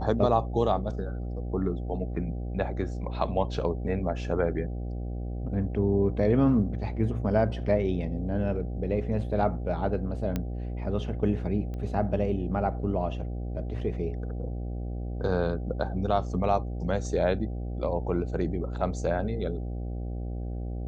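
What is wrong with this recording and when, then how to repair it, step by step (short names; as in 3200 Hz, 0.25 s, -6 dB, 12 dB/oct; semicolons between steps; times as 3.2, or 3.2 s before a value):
buzz 60 Hz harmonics 13 -33 dBFS
10.36 pop -16 dBFS
11.74 pop -27 dBFS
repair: de-click; de-hum 60 Hz, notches 13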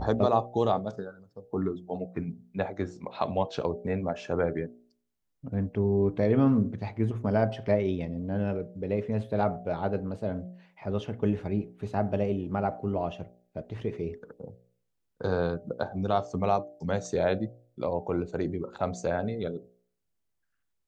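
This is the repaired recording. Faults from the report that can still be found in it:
none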